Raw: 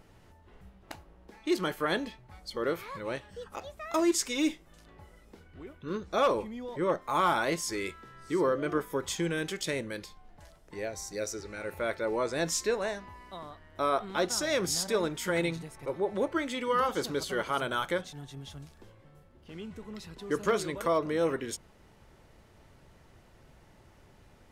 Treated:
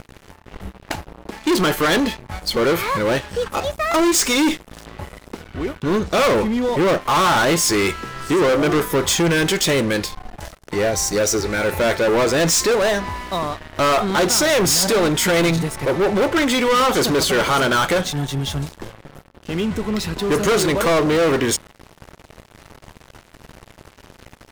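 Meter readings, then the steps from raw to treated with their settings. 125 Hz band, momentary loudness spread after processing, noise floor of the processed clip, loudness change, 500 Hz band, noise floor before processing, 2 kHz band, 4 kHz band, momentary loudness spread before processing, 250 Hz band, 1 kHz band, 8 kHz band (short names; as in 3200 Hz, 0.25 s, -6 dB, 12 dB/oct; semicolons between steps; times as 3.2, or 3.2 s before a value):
+16.5 dB, 14 LU, -50 dBFS, +13.0 dB, +12.5 dB, -59 dBFS, +14.5 dB, +16.0 dB, 17 LU, +14.0 dB, +12.0 dB, +15.5 dB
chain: sample leveller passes 5; gain +3 dB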